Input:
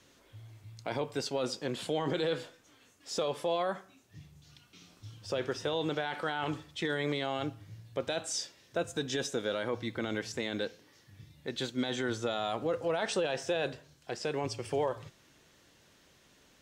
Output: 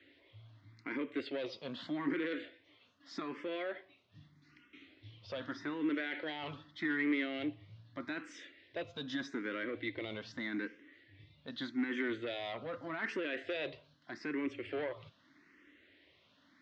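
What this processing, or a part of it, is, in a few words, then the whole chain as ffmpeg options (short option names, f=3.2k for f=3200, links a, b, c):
barber-pole phaser into a guitar amplifier: -filter_complex "[0:a]asplit=2[a][b];[b]afreqshift=0.82[c];[a][c]amix=inputs=2:normalize=1,asoftclip=type=tanh:threshold=-30.5dB,highpass=100,equalizer=f=130:t=q:w=4:g=-9,equalizer=f=180:t=q:w=4:g=-7,equalizer=f=290:t=q:w=4:g=9,equalizer=f=470:t=q:w=4:g=-5,equalizer=f=810:t=q:w=4:g=-10,equalizer=f=2k:t=q:w=4:g=9,lowpass=f=3.9k:w=0.5412,lowpass=f=3.9k:w=1.3066"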